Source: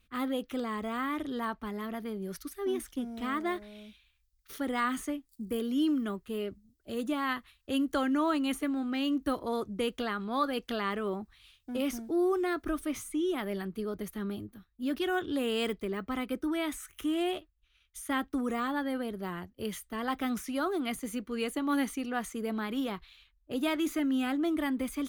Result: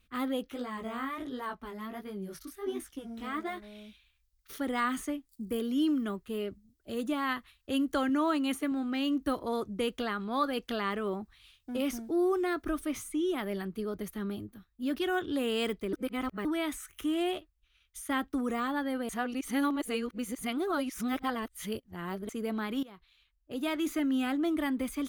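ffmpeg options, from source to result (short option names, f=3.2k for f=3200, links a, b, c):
-filter_complex "[0:a]asplit=3[a][b][c];[a]afade=t=out:st=0.45:d=0.02[d];[b]flanger=delay=15:depth=7.8:speed=1.4,afade=t=in:st=0.45:d=0.02,afade=t=out:st=3.62:d=0.02[e];[c]afade=t=in:st=3.62:d=0.02[f];[d][e][f]amix=inputs=3:normalize=0,asettb=1/sr,asplit=3[g][h][i];[g]atrim=end=8.094[j];[h]atrim=start=8.09:end=8.72,asetpts=PTS-STARTPTS,afade=t=in:d=0.004:c=qsin,afade=t=out:st=0.626:d=0.004:c=qsin,highpass=79[k];[i]atrim=start=8.716[l];[j][k]acrossfade=d=0.004:c1=hsin:c2=qsin[m];[m][l]acrossfade=d=0.004:c1=qsin:c2=hsin,asplit=6[n][o][p][q][r][s];[n]atrim=end=15.932[t];[o]atrim=start=15.928:end=16.452,asetpts=PTS-STARTPTS,areverse[u];[p]atrim=start=16.448:end=19.092[v];[q]atrim=start=19.088:end=22.292,asetpts=PTS-STARTPTS,areverse[w];[r]atrim=start=22.288:end=22.83,asetpts=PTS-STARTPTS,afade=t=out:st=0.538:d=0.004:c=hsin:silence=0.112202[x];[s]atrim=start=22.83,asetpts=PTS-STARTPTS,afade=t=in:d=1.15:silence=0.112202[y];[t][u]acrossfade=d=0.004:c1=hsin:c2=hsin[z];[z][v]acrossfade=d=0.004:c1=hsin:c2=hsin[aa];[aa][w]acrossfade=d=0.004:c1=hsin:c2=hsin[ab];[x][y]concat=n=2:v=0:a=1[ac];[ab][ac]acrossfade=d=0.004:c1=hsin:c2=hsin"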